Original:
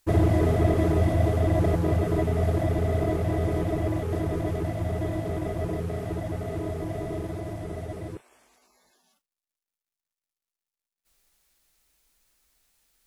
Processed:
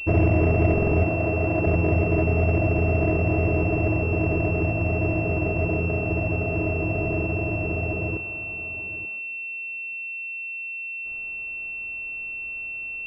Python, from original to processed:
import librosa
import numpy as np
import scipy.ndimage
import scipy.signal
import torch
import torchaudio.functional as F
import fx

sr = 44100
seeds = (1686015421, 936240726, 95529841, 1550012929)

p1 = fx.bin_compress(x, sr, power=0.6)
p2 = fx.low_shelf(p1, sr, hz=160.0, db=-7.5, at=(1.04, 1.67))
p3 = p2 + fx.echo_single(p2, sr, ms=883, db=-15.5, dry=0)
p4 = fx.buffer_glitch(p3, sr, at_s=(0.73,), block=2048, repeats=3)
y = fx.pwm(p4, sr, carrier_hz=2700.0)